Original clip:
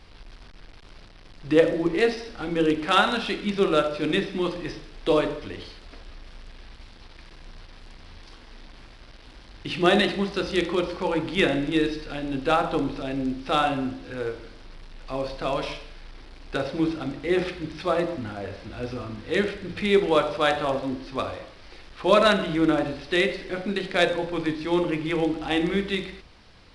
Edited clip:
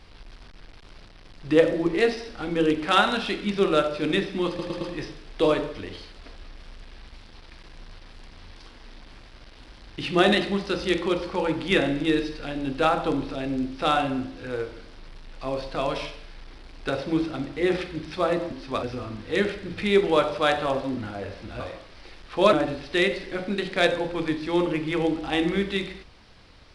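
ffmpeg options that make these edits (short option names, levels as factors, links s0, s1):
-filter_complex "[0:a]asplit=9[s0][s1][s2][s3][s4][s5][s6][s7][s8];[s0]atrim=end=4.592[s9];[s1]atrim=start=4.478:end=4.592[s10];[s2]atrim=start=4.478:end=4.592[s11];[s3]atrim=start=4.478:end=18.192[s12];[s4]atrim=start=20.958:end=21.272[s13];[s5]atrim=start=18.818:end=20.962[s14];[s6]atrim=start=18.188:end=18.822[s15];[s7]atrim=start=21.268:end=22.202[s16];[s8]atrim=start=22.708[s17];[s9][s10]acrossfade=d=0.004:c1=hsin:c2=hsin[s18];[s18][s11]acrossfade=d=0.004:c1=hsin:c2=hsin[s19];[s19][s12]acrossfade=d=0.004:c1=hsin:c2=hsin[s20];[s20][s13]acrossfade=d=0.004:c1=hsin:c2=hsin[s21];[s21][s14]acrossfade=d=0.004:c1=hsin:c2=hsin[s22];[s22][s15]acrossfade=d=0.004:c1=hsin:c2=hsin[s23];[s23][s16]acrossfade=d=0.004:c1=hsin:c2=hsin[s24];[s24][s17]acrossfade=d=0.004:c1=hsin:c2=hsin"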